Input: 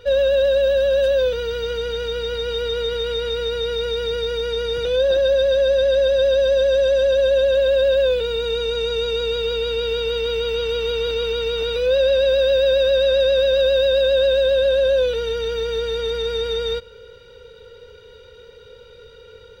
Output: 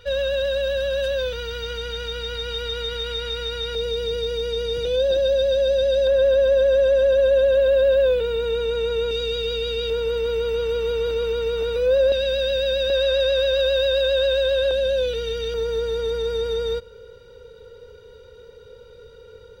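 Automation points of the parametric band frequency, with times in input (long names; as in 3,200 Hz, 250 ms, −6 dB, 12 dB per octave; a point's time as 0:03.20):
parametric band −8.5 dB 1.7 octaves
400 Hz
from 0:03.75 1,300 Hz
from 0:06.07 4,900 Hz
from 0:09.11 950 Hz
from 0:09.90 3,500 Hz
from 0:12.12 770 Hz
from 0:12.90 270 Hz
from 0:14.71 940 Hz
from 0:15.54 2,700 Hz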